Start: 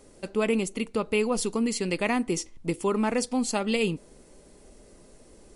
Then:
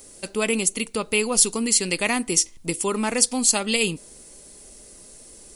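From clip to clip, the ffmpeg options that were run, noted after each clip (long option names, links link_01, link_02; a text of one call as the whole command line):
ffmpeg -i in.wav -af "crystalizer=i=5:c=0" out.wav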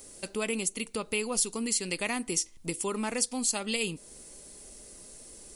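ffmpeg -i in.wav -af "acompressor=threshold=-34dB:ratio=1.5,volume=-3dB" out.wav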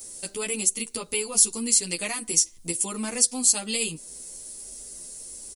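ffmpeg -i in.wav -filter_complex "[0:a]bass=frequency=250:gain=1,treble=frequency=4000:gain=11,asplit=2[link_01][link_02];[link_02]adelay=10.6,afreqshift=1.3[link_03];[link_01][link_03]amix=inputs=2:normalize=1,volume=2dB" out.wav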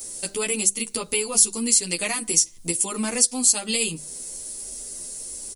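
ffmpeg -i in.wav -filter_complex "[0:a]bandreject=frequency=50:width_type=h:width=6,bandreject=frequency=100:width_type=h:width=6,bandreject=frequency=150:width_type=h:width=6,bandreject=frequency=200:width_type=h:width=6,asplit=2[link_01][link_02];[link_02]acompressor=threshold=-28dB:ratio=6,volume=-1.5dB[link_03];[link_01][link_03]amix=inputs=2:normalize=0" out.wav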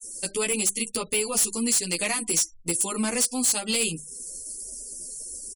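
ffmpeg -i in.wav -af "agate=range=-33dB:threshold=-32dB:ratio=3:detection=peak,asoftclip=type=hard:threshold=-18.5dB,afftfilt=real='re*gte(hypot(re,im),0.00708)':imag='im*gte(hypot(re,im),0.00708)':win_size=1024:overlap=0.75" out.wav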